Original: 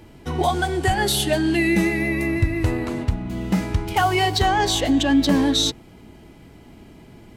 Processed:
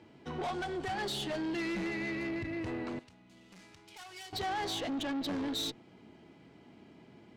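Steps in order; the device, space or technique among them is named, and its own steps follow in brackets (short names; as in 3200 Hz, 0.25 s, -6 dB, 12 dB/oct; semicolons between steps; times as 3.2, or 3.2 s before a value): valve radio (BPF 150–5000 Hz; tube stage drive 23 dB, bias 0.3; core saturation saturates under 140 Hz); 2.99–4.33 pre-emphasis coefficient 0.9; gain -8.5 dB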